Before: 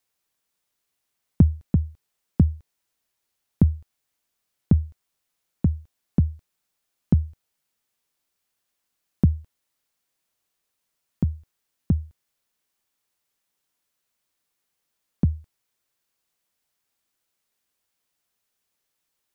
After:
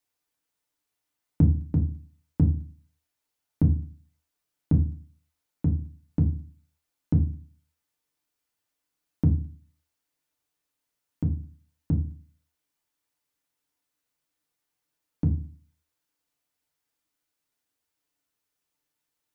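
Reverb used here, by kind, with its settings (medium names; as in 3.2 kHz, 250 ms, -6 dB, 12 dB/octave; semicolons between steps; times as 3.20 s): FDN reverb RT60 0.37 s, low-frequency decay 1.35×, high-frequency decay 0.5×, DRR 1.5 dB; trim -6 dB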